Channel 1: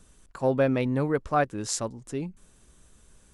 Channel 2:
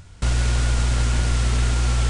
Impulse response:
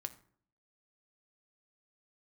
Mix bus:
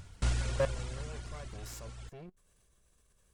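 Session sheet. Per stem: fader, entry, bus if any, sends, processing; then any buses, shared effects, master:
−5.5 dB, 0.00 s, no send, lower of the sound and its delayed copy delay 1.8 ms; output level in coarse steps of 21 dB
−5.5 dB, 0.00 s, no send, reverb reduction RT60 1.5 s; automatic ducking −17 dB, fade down 1.60 s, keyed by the first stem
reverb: not used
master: no processing

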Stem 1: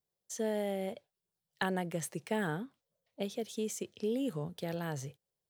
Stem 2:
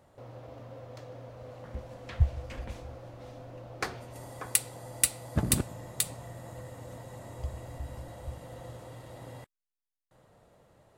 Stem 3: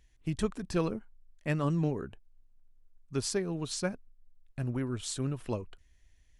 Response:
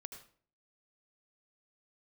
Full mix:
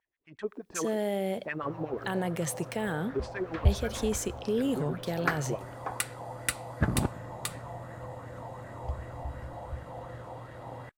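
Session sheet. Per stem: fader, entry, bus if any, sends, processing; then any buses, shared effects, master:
−4.5 dB, 0.45 s, bus A, send −3.5 dB, no processing
+1.0 dB, 1.45 s, no bus, no send, high-shelf EQ 4,000 Hz −11 dB; auto-filter bell 2.7 Hz 800–1,700 Hz +11 dB
−4.5 dB, 0.00 s, bus A, send −19 dB, high-shelf EQ 8,700 Hz −11.5 dB; auto-filter band-pass sine 8.1 Hz 380–2,000 Hz
bus A: 0.0 dB, automatic gain control gain up to 11.5 dB; brickwall limiter −22.5 dBFS, peak gain reduction 11.5 dB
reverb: on, RT60 0.50 s, pre-delay 71 ms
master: no processing

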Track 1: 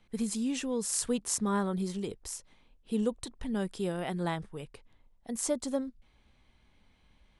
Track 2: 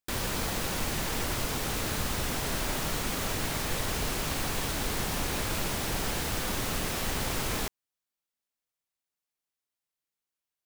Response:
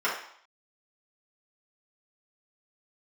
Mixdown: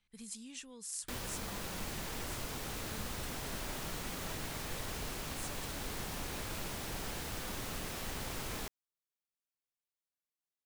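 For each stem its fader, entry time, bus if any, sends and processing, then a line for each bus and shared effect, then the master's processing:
−6.0 dB, 0.00 s, no send, guitar amp tone stack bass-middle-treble 5-5-5
−9.5 dB, 1.00 s, no send, no processing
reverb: not used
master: speech leveller within 5 dB 0.5 s

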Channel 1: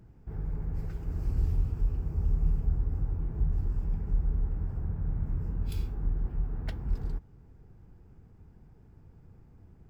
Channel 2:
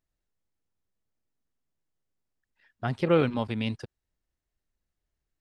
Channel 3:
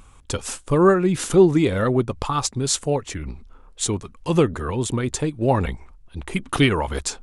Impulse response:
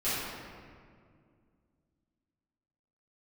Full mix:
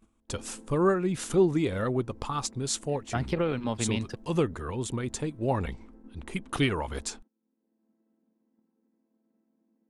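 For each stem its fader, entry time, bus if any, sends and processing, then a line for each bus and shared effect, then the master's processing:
0.0 dB, 0.00 s, no send, channel vocoder with a chord as carrier minor triad, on A3; automatic ducking −11 dB, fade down 0.95 s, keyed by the third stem
+2.5 dB, 0.30 s, no send, downward compressor 6 to 1, threshold −27 dBFS, peak gain reduction 10 dB
−8.5 dB, 0.00 s, no send, no processing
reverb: not used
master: noise gate −51 dBFS, range −16 dB

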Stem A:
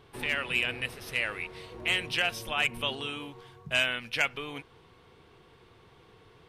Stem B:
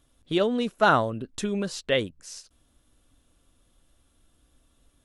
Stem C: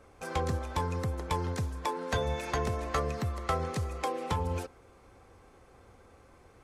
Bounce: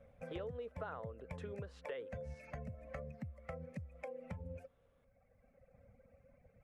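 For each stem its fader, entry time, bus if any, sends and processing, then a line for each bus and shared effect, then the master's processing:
muted
−5.5 dB, 0.00 s, bus A, no send, three-way crossover with the lows and the highs turned down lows −15 dB, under 480 Hz, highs −22 dB, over 2,400 Hz
−4.0 dB, 0.00 s, no bus, no send, reverb reduction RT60 1.8 s; drawn EQ curve 100 Hz 0 dB, 160 Hz +5 dB, 250 Hz +1 dB, 350 Hz −26 dB, 540 Hz +7 dB, 970 Hz −17 dB, 2,300 Hz −3 dB, 3,500 Hz −25 dB, 5,800 Hz −20 dB
bus A: 0.0 dB, parametric band 460 Hz +13 dB 0.28 octaves; downward compressor, threshold −26 dBFS, peak gain reduction 6.5 dB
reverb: not used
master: downward compressor 4 to 1, threshold −44 dBFS, peak gain reduction 15.5 dB

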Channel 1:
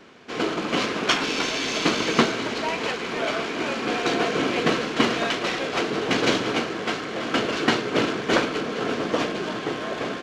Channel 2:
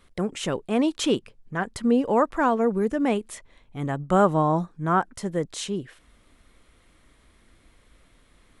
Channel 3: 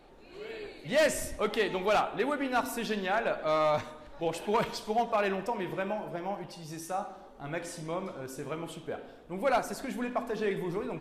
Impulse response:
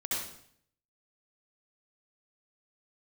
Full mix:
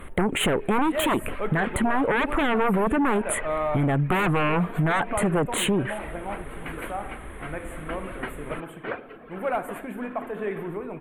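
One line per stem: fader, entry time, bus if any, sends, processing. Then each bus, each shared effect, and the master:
−11.5 dB, 0.55 s, no bus, no send, reverb reduction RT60 1.2 s; inverse Chebyshev low-pass filter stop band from 6,800 Hz, stop band 60 dB; tilt shelving filter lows −5 dB
−0.5 dB, 0.00 s, bus A, no send, sine wavefolder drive 15 dB, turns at −7.5 dBFS
+1.0 dB, 0.00 s, bus A, no send, no processing
bus A: 0.0 dB, Butterworth band-reject 5,200 Hz, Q 0.7; brickwall limiter −12 dBFS, peak gain reduction 6.5 dB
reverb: not used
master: downward compressor, threshold −20 dBFS, peak gain reduction 6 dB

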